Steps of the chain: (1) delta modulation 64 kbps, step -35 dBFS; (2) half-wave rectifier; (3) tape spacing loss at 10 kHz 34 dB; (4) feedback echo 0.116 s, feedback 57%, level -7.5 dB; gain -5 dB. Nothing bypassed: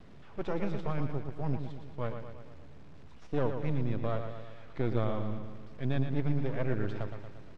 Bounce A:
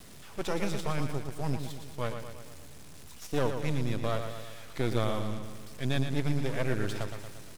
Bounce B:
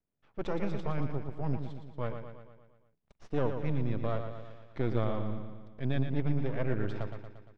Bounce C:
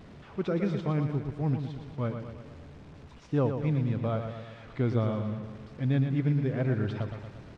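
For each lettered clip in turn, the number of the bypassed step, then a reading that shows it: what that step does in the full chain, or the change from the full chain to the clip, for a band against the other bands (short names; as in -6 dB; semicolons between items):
3, 2 kHz band +5.0 dB; 1, momentary loudness spread change -1 LU; 2, distortion 0 dB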